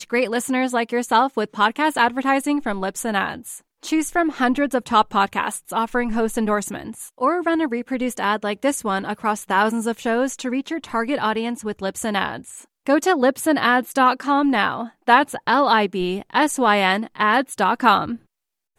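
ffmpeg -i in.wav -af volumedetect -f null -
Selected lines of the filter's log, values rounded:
mean_volume: -20.8 dB
max_volume: -1.9 dB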